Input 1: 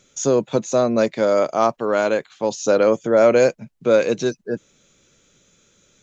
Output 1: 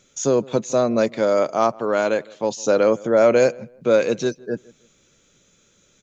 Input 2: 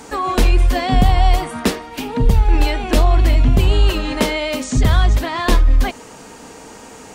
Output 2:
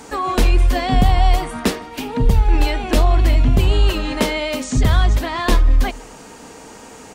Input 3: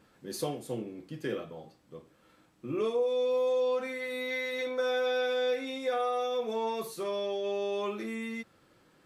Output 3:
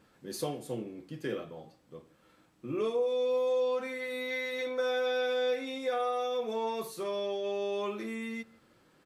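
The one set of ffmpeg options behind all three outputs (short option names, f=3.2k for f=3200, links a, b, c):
-filter_complex "[0:a]asplit=2[a][b];[b]adelay=159,lowpass=f=1.9k:p=1,volume=-23dB,asplit=2[c][d];[d]adelay=159,lowpass=f=1.9k:p=1,volume=0.28[e];[a][c][e]amix=inputs=3:normalize=0,volume=-1dB"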